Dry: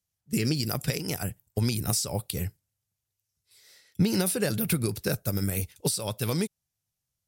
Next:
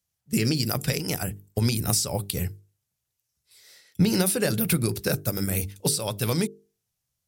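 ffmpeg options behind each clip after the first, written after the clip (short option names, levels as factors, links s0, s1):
-af "bandreject=f=50:t=h:w=6,bandreject=f=100:t=h:w=6,bandreject=f=150:t=h:w=6,bandreject=f=200:t=h:w=6,bandreject=f=250:t=h:w=6,bandreject=f=300:t=h:w=6,bandreject=f=350:t=h:w=6,bandreject=f=400:t=h:w=6,bandreject=f=450:t=h:w=6,volume=1.5"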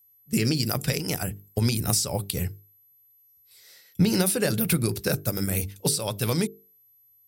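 -af "aeval=exprs='val(0)+0.00141*sin(2*PI*12000*n/s)':c=same"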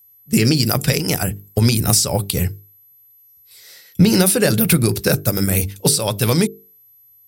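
-af "acontrast=84,volume=1.26"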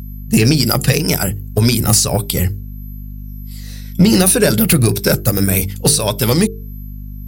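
-af "afftfilt=real='re*pow(10,7/40*sin(2*PI*(1.6*log(max(b,1)*sr/1024/100)/log(2)-(-1.8)*(pts-256)/sr)))':imag='im*pow(10,7/40*sin(2*PI*(1.6*log(max(b,1)*sr/1024/100)/log(2)-(-1.8)*(pts-256)/sr)))':win_size=1024:overlap=0.75,acontrast=23,aeval=exprs='val(0)+0.0501*(sin(2*PI*50*n/s)+sin(2*PI*2*50*n/s)/2+sin(2*PI*3*50*n/s)/3+sin(2*PI*4*50*n/s)/4+sin(2*PI*5*50*n/s)/5)':c=same,volume=0.841"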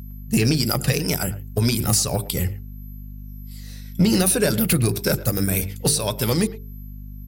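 -filter_complex "[0:a]asplit=2[s0][s1];[s1]adelay=110,highpass=300,lowpass=3400,asoftclip=type=hard:threshold=0.282,volume=0.158[s2];[s0][s2]amix=inputs=2:normalize=0,volume=0.447"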